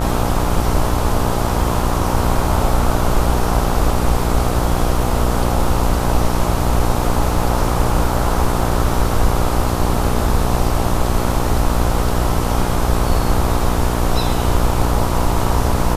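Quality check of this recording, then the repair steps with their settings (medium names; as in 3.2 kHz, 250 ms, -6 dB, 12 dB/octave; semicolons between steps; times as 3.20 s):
buzz 60 Hz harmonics 22 -20 dBFS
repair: de-hum 60 Hz, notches 22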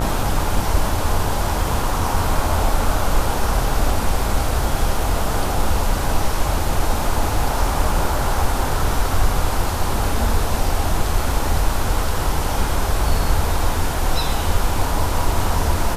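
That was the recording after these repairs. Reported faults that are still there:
nothing left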